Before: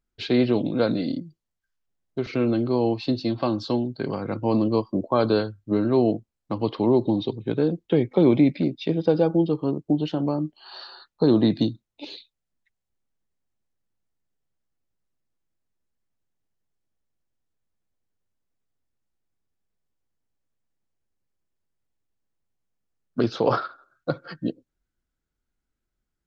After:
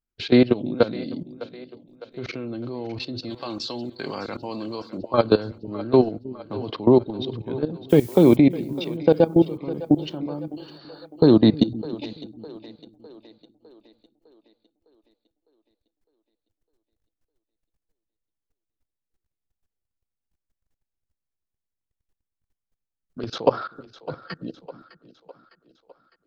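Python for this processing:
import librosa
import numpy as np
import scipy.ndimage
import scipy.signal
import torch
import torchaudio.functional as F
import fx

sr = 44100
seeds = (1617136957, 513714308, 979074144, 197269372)

y = fx.tilt_eq(x, sr, slope=3.5, at=(3.29, 4.97), fade=0.02)
y = fx.level_steps(y, sr, step_db=19)
y = fx.dmg_noise_colour(y, sr, seeds[0], colour='blue', level_db=-50.0, at=(7.89, 8.35), fade=0.02)
y = fx.echo_split(y, sr, split_hz=350.0, low_ms=313, high_ms=606, feedback_pct=52, wet_db=-16)
y = y * librosa.db_to_amplitude(6.5)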